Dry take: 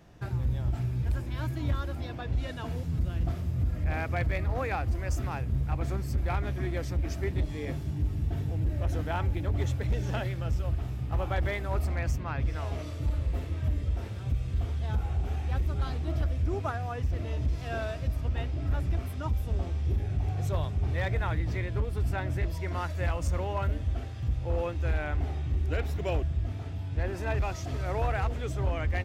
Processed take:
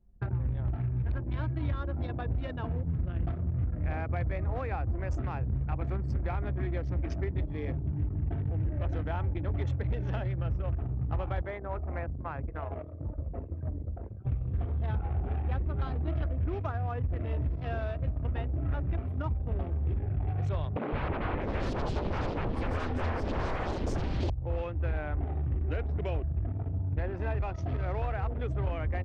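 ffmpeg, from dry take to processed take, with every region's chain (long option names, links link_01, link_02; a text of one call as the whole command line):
ffmpeg -i in.wav -filter_complex "[0:a]asettb=1/sr,asplit=3[link_01][link_02][link_03];[link_01]atrim=end=11.414[link_04];[link_02]atrim=start=11.41:end=14.25,asetpts=PTS-STARTPTS,afade=type=in:duration=0.004:curve=qsin,afade=type=out:start_time=2.836:duration=0.004:curve=qsin,lowshelf=frequency=200:gain=-11.5,bandreject=frequency=60:width_type=h:width=6,bandreject=frequency=120:width_type=h:width=6,bandreject=frequency=180:width_type=h:width=6,bandreject=frequency=240:width_type=h:width=6,bandreject=frequency=300:width_type=h:width=6,bandreject=frequency=360:width_type=h:width=6,bandreject=frequency=420:width_type=h:width=6,adynamicsmooth=sensitivity=1:basefreq=3000[link_05];[link_03]atrim=start=14.246[link_06];[link_04][link_05]acrossfade=duration=0.004:curve1=hsin:curve2=qsin[link_07];[link_07][link_06]acrossfade=duration=0.004:curve1=qsin:curve2=hsin,asettb=1/sr,asplit=3[link_08][link_09][link_10];[link_08]atrim=end=20.764[link_11];[link_09]atrim=start=20.76:end=24.3,asetpts=PTS-STARTPTS,afade=type=in:duration=0.004:curve=qsin,afade=type=out:start_time=3.536:duration=0.004:curve=qsin,aeval=exprs='0.0841*sin(PI/2*5.01*val(0)/0.0841)':channel_layout=same,acrossover=split=190|3100[link_12][link_13][link_14];[link_12]adelay=160[link_15];[link_14]adelay=650[link_16];[link_15][link_13][link_16]amix=inputs=3:normalize=0,atrim=end_sample=156114[link_17];[link_10]atrim=start=24.296[link_18];[link_11][link_17]acrossfade=duration=0.004:curve1=hsin:curve2=qsin[link_19];[link_19][link_18]acrossfade=duration=0.004:curve1=qsin:curve2=hsin,anlmdn=0.631,lowpass=4100,acrossover=split=110|1400[link_20][link_21][link_22];[link_20]acompressor=threshold=-37dB:ratio=4[link_23];[link_21]acompressor=threshold=-41dB:ratio=4[link_24];[link_22]acompressor=threshold=-56dB:ratio=4[link_25];[link_23][link_24][link_25]amix=inputs=3:normalize=0,volume=5.5dB" out.wav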